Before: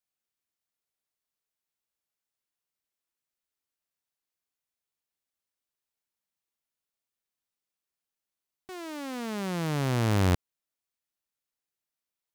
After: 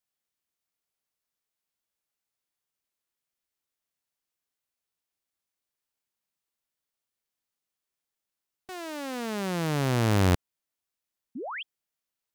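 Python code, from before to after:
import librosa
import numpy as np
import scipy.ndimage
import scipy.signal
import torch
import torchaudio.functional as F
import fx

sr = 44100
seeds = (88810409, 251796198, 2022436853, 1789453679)

y = fx.formant_shift(x, sr, semitones=3)
y = fx.spec_paint(y, sr, seeds[0], shape='rise', start_s=11.35, length_s=0.28, low_hz=210.0, high_hz=3500.0, level_db=-37.0)
y = y * librosa.db_to_amplitude(1.5)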